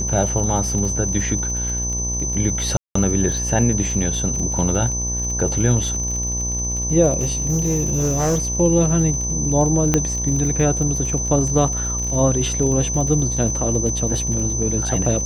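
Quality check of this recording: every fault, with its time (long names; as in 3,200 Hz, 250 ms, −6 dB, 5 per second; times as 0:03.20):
mains buzz 60 Hz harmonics 19 −26 dBFS
surface crackle 44 per second −26 dBFS
whistle 6,100 Hz −23 dBFS
0:02.77–0:02.95: drop-out 184 ms
0:07.19–0:08.42: clipping −14.5 dBFS
0:09.94: click −3 dBFS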